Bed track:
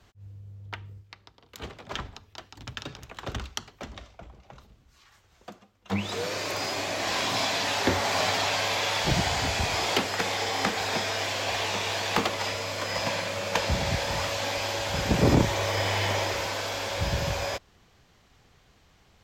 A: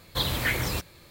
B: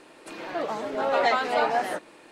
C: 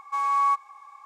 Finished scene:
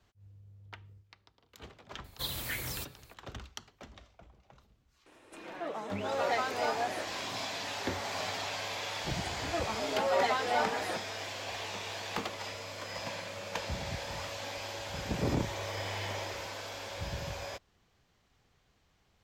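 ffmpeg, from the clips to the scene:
ffmpeg -i bed.wav -i cue0.wav -i cue1.wav -filter_complex "[2:a]asplit=2[link_01][link_02];[0:a]volume=-10.5dB[link_03];[1:a]highshelf=frequency=4600:gain=10.5[link_04];[link_01]bandreject=frequency=4500:width=7.5[link_05];[link_02]asplit=2[link_06][link_07];[link_07]adelay=4.6,afreqshift=2.3[link_08];[link_06][link_08]amix=inputs=2:normalize=1[link_09];[link_04]atrim=end=1.1,asetpts=PTS-STARTPTS,volume=-13dB,afade=type=in:duration=0.004:curve=hsin,afade=type=out:start_time=1.096:duration=0.004:curve=hsin,adelay=2040[link_10];[link_05]atrim=end=2.31,asetpts=PTS-STARTPTS,volume=-8.5dB,afade=type=in:duration=0.004:curve=hsin,afade=type=out:start_time=2.306:duration=0.004:curve=hsin,adelay=5060[link_11];[link_09]atrim=end=2.31,asetpts=PTS-STARTPTS,volume=-3dB,afade=type=in:duration=0.004:curve=hsin,afade=type=out:start_time=2.306:duration=0.004:curve=hsin,adelay=396018S[link_12];[link_03][link_10][link_11][link_12]amix=inputs=4:normalize=0" out.wav

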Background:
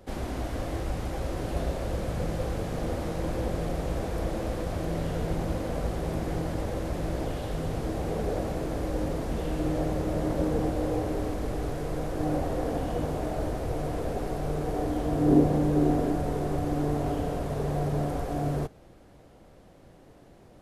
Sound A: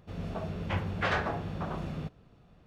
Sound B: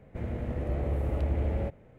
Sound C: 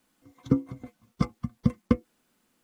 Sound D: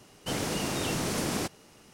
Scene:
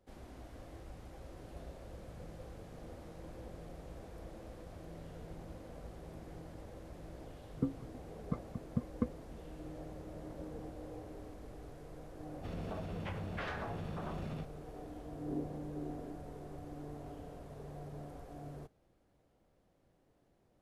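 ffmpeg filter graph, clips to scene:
ffmpeg -i bed.wav -i cue0.wav -i cue1.wav -i cue2.wav -filter_complex "[0:a]volume=-19dB[link_01];[3:a]lowpass=1400[link_02];[1:a]acompressor=threshold=-41dB:ratio=6:attack=16:release=45:knee=1:detection=peak[link_03];[link_02]atrim=end=2.63,asetpts=PTS-STARTPTS,volume=-11.5dB,afade=type=in:duration=0.004:curve=hsin,afade=type=out:start_time=2.626:duration=0.004:curve=hsin,adelay=7110[link_04];[link_03]atrim=end=2.66,asetpts=PTS-STARTPTS,volume=-1dB,afade=type=in:duration=0.004:curve=hsin,afade=type=out:start_time=2.656:duration=0.004:curve=hsin,adelay=545076S[link_05];[link_01][link_04][link_05]amix=inputs=3:normalize=0" out.wav

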